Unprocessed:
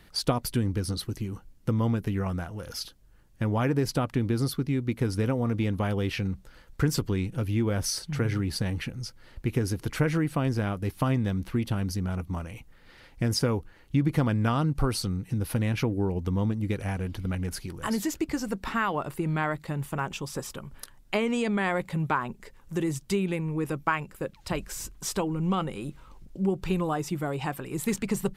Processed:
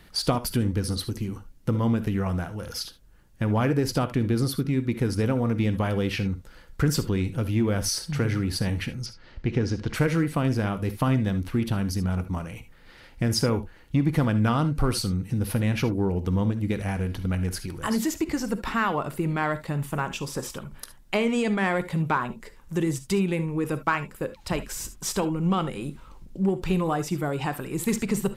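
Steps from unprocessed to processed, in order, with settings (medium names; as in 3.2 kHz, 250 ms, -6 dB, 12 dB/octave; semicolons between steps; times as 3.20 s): 9.06–9.94 s: low-pass 5.8 kHz 24 dB/octave; in parallel at -9 dB: hard clipper -23 dBFS, distortion -13 dB; on the sum: gated-style reverb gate 90 ms rising, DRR 12 dB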